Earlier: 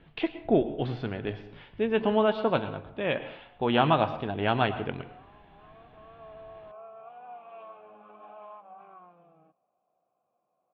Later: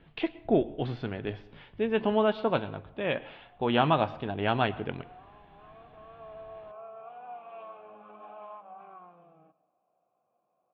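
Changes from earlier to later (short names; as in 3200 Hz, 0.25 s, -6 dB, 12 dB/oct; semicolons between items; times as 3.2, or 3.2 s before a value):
speech: send -7.5 dB; background: send on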